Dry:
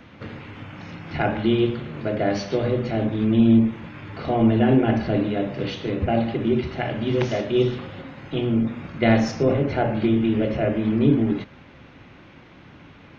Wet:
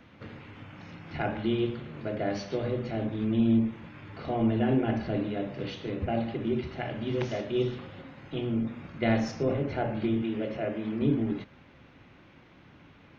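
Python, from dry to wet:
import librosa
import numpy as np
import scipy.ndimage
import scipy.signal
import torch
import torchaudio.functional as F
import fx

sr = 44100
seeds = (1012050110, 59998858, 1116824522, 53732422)

y = fx.highpass(x, sr, hz=220.0, slope=6, at=(10.22, 11.02))
y = y * librosa.db_to_amplitude(-8.0)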